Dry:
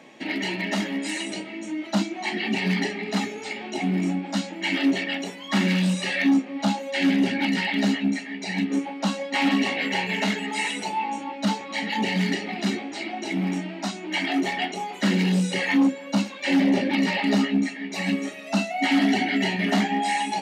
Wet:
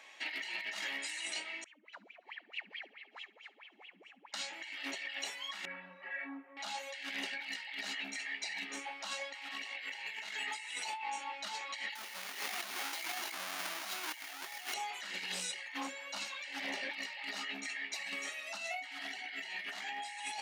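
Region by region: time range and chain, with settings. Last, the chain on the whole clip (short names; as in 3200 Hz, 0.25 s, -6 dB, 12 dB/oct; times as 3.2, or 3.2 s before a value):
1.64–4.34 wah 4.6 Hz 200–3200 Hz, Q 14 + multi-head echo 70 ms, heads first and third, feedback 65%, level -21 dB
5.65–6.57 LPF 1700 Hz 24 dB/oct + metallic resonator 82 Hz, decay 0.21 s, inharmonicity 0.03
11.95–14.74 half-waves squared off + notch 7800 Hz, Q 8.6
whole clip: HPF 1200 Hz 12 dB/oct; negative-ratio compressor -36 dBFS, ratio -1; gain -6 dB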